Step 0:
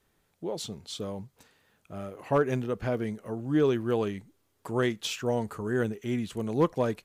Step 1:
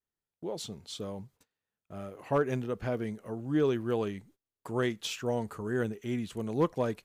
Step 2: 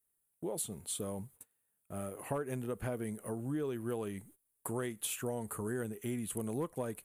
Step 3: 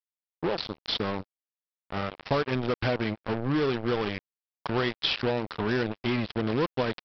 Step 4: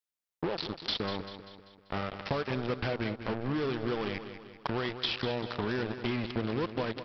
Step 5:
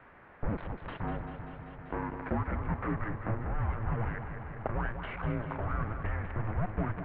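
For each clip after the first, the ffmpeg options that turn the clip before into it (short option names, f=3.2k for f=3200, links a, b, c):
-af "agate=range=-22dB:threshold=-54dB:ratio=16:detection=peak,volume=-3dB"
-af "highshelf=f=7.3k:t=q:w=3:g=12.5,acompressor=threshold=-35dB:ratio=6,volume=1dB"
-af "crystalizer=i=5:c=0,aresample=11025,acrusher=bits=5:mix=0:aa=0.5,aresample=44100,volume=9dB"
-filter_complex "[0:a]acompressor=threshold=-31dB:ratio=6,asplit=2[a][b];[b]aecho=0:1:195|390|585|780|975:0.299|0.146|0.0717|0.0351|0.0172[c];[a][c]amix=inputs=2:normalize=0,volume=2dB"
-af "aeval=exprs='val(0)+0.5*0.0168*sgn(val(0))':c=same,highpass=f=240:t=q:w=0.5412,highpass=f=240:t=q:w=1.307,lowpass=f=2.2k:t=q:w=0.5176,lowpass=f=2.2k:t=q:w=0.7071,lowpass=f=2.2k:t=q:w=1.932,afreqshift=-330"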